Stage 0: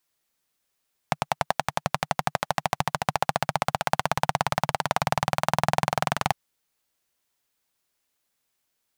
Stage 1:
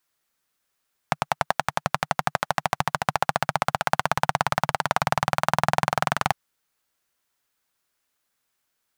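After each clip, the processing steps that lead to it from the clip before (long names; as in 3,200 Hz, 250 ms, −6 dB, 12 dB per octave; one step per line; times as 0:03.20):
parametric band 1,400 Hz +5 dB 0.86 octaves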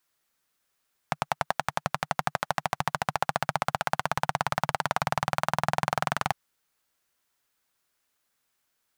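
brickwall limiter −8 dBFS, peak gain reduction 6 dB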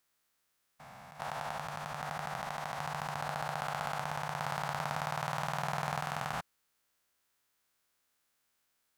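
spectrum averaged block by block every 400 ms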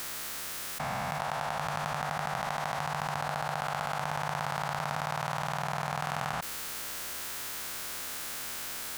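envelope flattener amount 100%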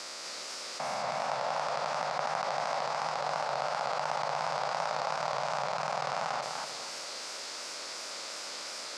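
loudspeaker in its box 300–7,400 Hz, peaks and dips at 570 Hz +7 dB, 1,700 Hz −5 dB, 3,100 Hz −4 dB, 4,900 Hz +7 dB
feedback echo with a swinging delay time 243 ms, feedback 37%, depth 169 cents, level −4 dB
level −1 dB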